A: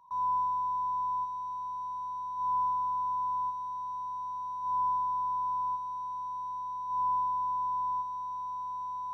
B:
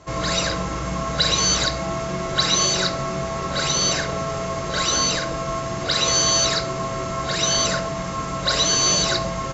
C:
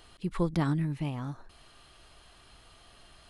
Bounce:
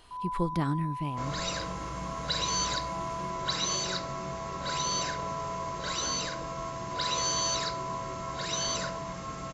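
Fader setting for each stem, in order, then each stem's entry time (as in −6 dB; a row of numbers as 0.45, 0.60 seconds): −6.5, −11.5, −1.5 decibels; 0.00, 1.10, 0.00 seconds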